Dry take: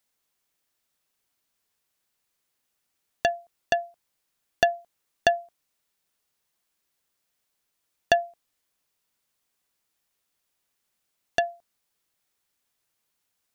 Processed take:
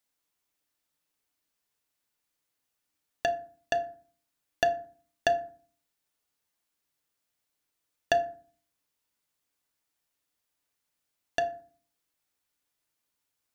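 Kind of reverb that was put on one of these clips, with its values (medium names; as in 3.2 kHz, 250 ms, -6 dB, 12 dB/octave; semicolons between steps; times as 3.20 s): FDN reverb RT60 0.45 s, low-frequency decay 1.45×, high-frequency decay 0.55×, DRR 6.5 dB; trim -5 dB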